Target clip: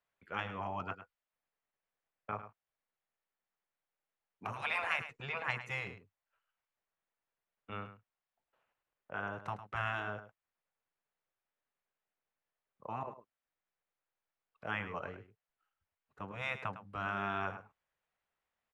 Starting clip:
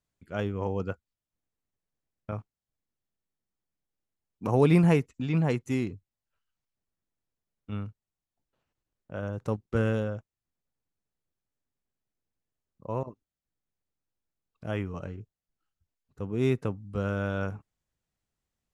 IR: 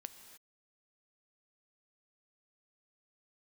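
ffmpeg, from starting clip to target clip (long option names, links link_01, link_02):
-filter_complex "[0:a]acrossover=split=260 2900:gain=0.1 1 0.112[link_01][link_02][link_03];[link_01][link_02][link_03]amix=inputs=3:normalize=0,afftfilt=real='re*lt(hypot(re,im),0.0708)':imag='im*lt(hypot(re,im),0.0708)':win_size=1024:overlap=0.75,equalizer=frequency=300:width=1:gain=-12.5,asplit=2[link_04][link_05];[link_05]aecho=0:1:105:0.251[link_06];[link_04][link_06]amix=inputs=2:normalize=0,volume=6dB"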